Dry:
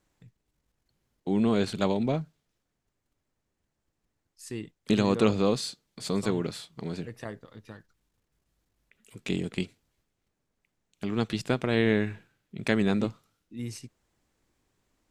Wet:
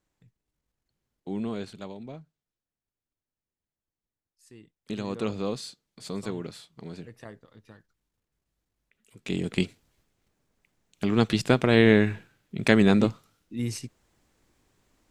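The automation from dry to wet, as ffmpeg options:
-af "volume=14dB,afade=t=out:st=1.33:d=0.53:silence=0.398107,afade=t=in:st=4.59:d=0.88:silence=0.375837,afade=t=in:st=9.19:d=0.45:silence=0.266073"

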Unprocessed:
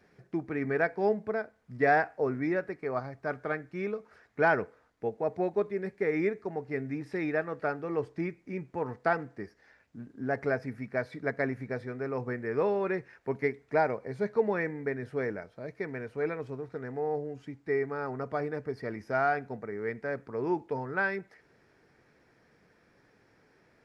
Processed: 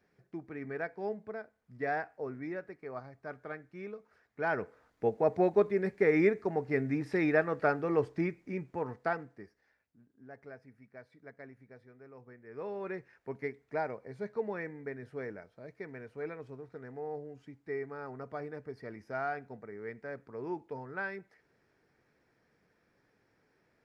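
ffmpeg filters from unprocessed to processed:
-af "volume=14.5dB,afade=t=in:st=4.42:d=0.67:silence=0.237137,afade=t=out:st=7.86:d=1.52:silence=0.251189,afade=t=out:st=9.38:d=0.61:silence=0.298538,afade=t=in:st=12.44:d=0.45:silence=0.266073"

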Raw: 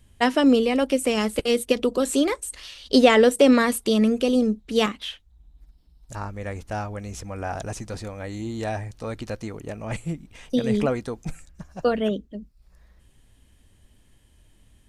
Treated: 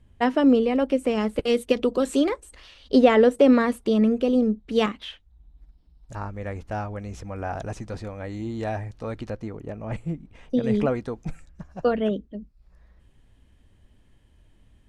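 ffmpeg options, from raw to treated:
-af "asetnsamples=n=441:p=0,asendcmd='1.44 lowpass f 2900;2.29 lowpass f 1300;4.68 lowpass f 2300;9.3 lowpass f 1100;10.63 lowpass f 2200',lowpass=f=1.3k:p=1"

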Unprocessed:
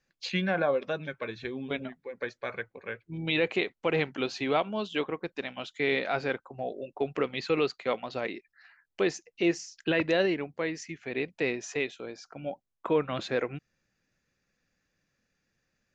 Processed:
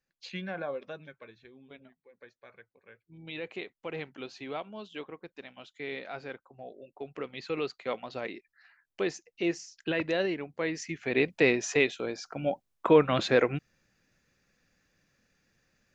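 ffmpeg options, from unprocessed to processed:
-af "volume=15dB,afade=t=out:st=0.85:d=0.58:silence=0.354813,afade=t=in:st=2.84:d=0.8:silence=0.421697,afade=t=in:st=7.04:d=0.95:silence=0.446684,afade=t=in:st=10.46:d=0.74:silence=0.334965"

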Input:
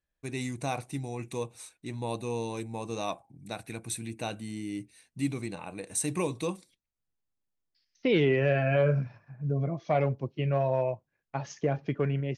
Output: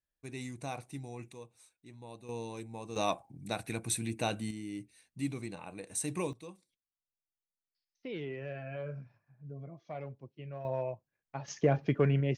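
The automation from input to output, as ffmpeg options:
-af "asetnsamples=n=441:p=0,asendcmd='1.32 volume volume -15dB;2.29 volume volume -7dB;2.96 volume volume 2dB;4.51 volume volume -5dB;6.33 volume volume -16dB;10.65 volume volume -7dB;11.48 volume volume 1.5dB',volume=-7.5dB"

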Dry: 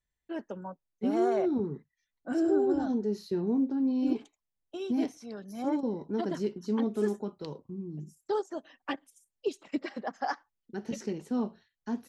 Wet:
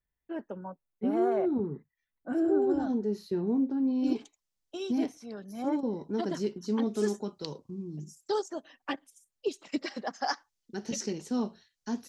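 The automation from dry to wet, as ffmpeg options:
-af "asetnsamples=n=441:p=0,asendcmd='2.62 equalizer g -3;4.04 equalizer g 8;4.98 equalizer g -1;5.93 equalizer g 5.5;6.87 equalizer g 12.5;8.48 equalizer g 3.5;9.63 equalizer g 12',equalizer=f=5.7k:t=o:w=1.4:g=-14"

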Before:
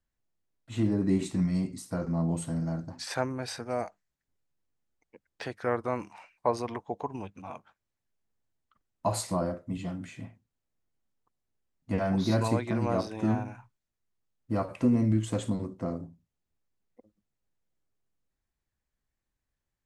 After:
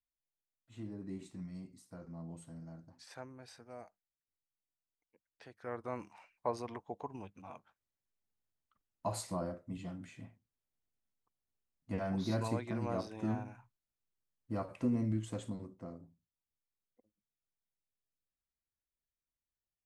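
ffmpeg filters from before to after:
-af "volume=-8.5dB,afade=t=in:st=5.53:d=0.46:silence=0.334965,afade=t=out:st=15.01:d=0.97:silence=0.473151"

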